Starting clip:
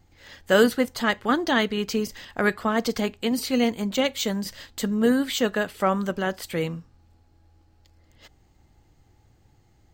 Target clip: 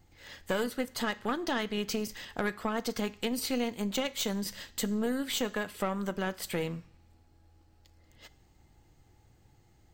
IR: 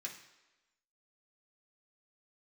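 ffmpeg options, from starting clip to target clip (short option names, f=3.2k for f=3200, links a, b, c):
-filter_complex "[0:a]acompressor=threshold=-27dB:ratio=4,aeval=exprs='(tanh(10*val(0)+0.6)-tanh(0.6))/10':c=same,asplit=2[a][b];[1:a]atrim=start_sample=2205,highshelf=f=5k:g=10[c];[b][c]afir=irnorm=-1:irlink=0,volume=-11dB[d];[a][d]amix=inputs=2:normalize=0"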